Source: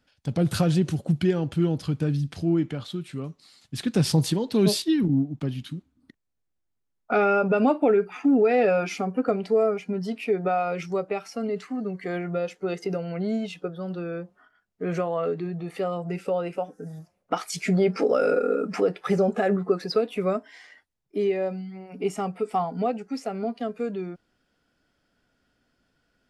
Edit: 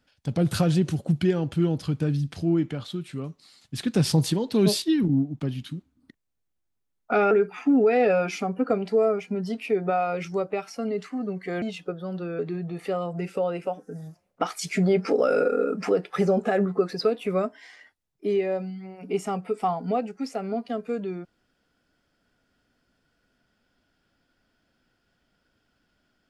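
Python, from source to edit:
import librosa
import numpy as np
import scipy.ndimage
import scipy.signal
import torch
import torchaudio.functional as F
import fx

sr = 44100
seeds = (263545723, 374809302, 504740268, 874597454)

y = fx.edit(x, sr, fx.cut(start_s=7.31, length_s=0.58),
    fx.cut(start_s=12.2, length_s=1.18),
    fx.cut(start_s=14.15, length_s=1.15), tone=tone)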